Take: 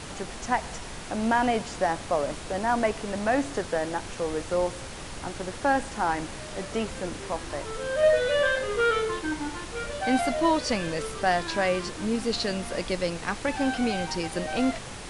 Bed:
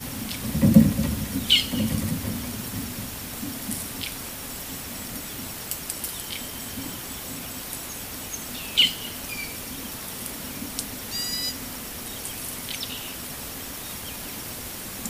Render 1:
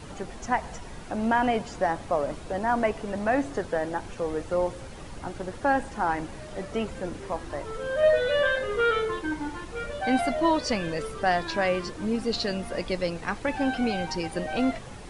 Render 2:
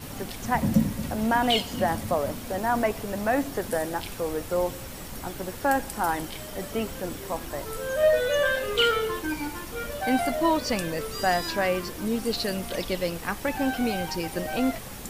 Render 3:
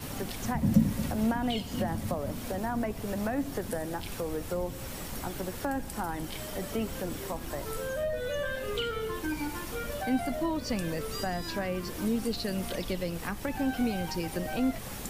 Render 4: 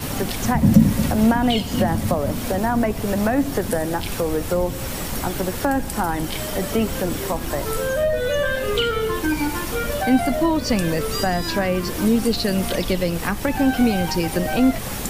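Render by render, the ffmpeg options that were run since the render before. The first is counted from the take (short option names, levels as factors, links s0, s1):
-af "afftdn=nr=9:nf=-39"
-filter_complex "[1:a]volume=0.422[s0];[0:a][s0]amix=inputs=2:normalize=0"
-filter_complex "[0:a]acrossover=split=280[s0][s1];[s1]acompressor=threshold=0.02:ratio=4[s2];[s0][s2]amix=inputs=2:normalize=0"
-af "volume=3.76,alimiter=limit=0.794:level=0:latency=1"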